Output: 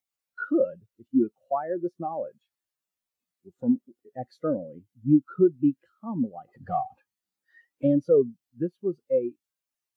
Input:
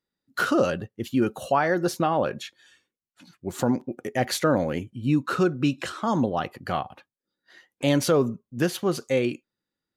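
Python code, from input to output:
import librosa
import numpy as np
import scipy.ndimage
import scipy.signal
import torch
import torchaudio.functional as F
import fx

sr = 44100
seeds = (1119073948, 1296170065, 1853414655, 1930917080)

y = fx.power_curve(x, sr, exponent=0.5, at=(6.48, 7.87))
y = fx.quant_dither(y, sr, seeds[0], bits=6, dither='triangular')
y = fx.spectral_expand(y, sr, expansion=2.5)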